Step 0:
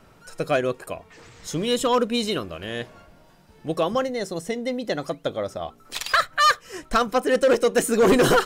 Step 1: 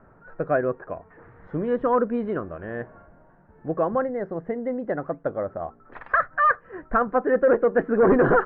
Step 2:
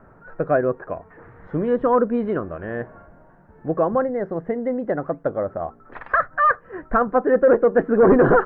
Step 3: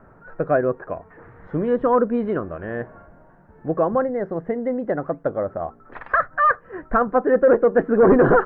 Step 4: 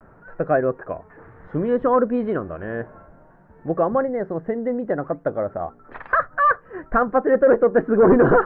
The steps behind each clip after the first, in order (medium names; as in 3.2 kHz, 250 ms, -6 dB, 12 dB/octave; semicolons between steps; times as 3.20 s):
Chebyshev low-pass 1.7 kHz, order 4
dynamic bell 2.3 kHz, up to -4 dB, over -36 dBFS, Q 0.81; trim +4 dB
no audible change
vibrato 0.59 Hz 46 cents